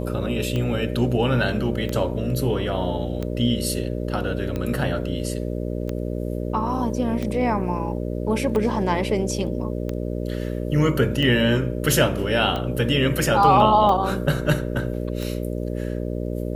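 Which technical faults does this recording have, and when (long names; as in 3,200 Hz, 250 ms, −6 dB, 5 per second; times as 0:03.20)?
mains buzz 60 Hz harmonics 10 −27 dBFS
scratch tick 45 rpm −15 dBFS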